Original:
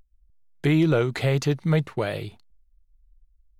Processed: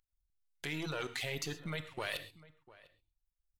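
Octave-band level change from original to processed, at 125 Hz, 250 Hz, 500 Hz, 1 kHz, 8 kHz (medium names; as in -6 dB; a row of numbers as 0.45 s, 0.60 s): -21.5 dB, -21.0 dB, -18.0 dB, -11.0 dB, -4.0 dB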